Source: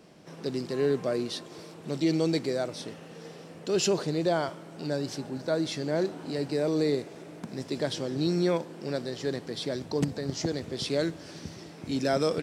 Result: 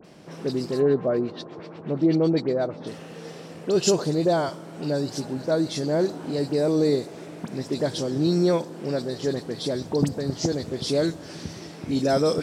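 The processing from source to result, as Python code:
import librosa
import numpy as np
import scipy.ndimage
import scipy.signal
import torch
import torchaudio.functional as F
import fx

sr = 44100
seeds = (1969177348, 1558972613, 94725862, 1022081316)

y = fx.dynamic_eq(x, sr, hz=2300.0, q=1.0, threshold_db=-49.0, ratio=4.0, max_db=-7)
y = fx.filter_lfo_lowpass(y, sr, shape='sine', hz=8.2, low_hz=870.0, high_hz=3600.0, q=0.98, at=(0.75, 2.82), fade=0.02)
y = fx.dispersion(y, sr, late='highs', ms=47.0, hz=2400.0)
y = F.gain(torch.from_numpy(y), 5.5).numpy()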